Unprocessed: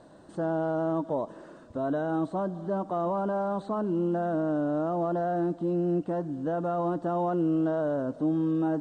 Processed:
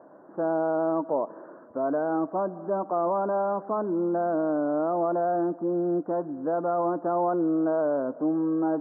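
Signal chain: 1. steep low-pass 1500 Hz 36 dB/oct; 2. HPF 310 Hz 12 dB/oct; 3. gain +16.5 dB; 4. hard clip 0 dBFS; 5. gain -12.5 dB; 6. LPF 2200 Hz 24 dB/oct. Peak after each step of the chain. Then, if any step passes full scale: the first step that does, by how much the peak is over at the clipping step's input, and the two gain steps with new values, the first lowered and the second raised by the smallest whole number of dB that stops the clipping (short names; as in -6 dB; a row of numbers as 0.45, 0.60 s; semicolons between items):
-18.5, -19.5, -3.0, -3.0, -15.5, -15.5 dBFS; no overload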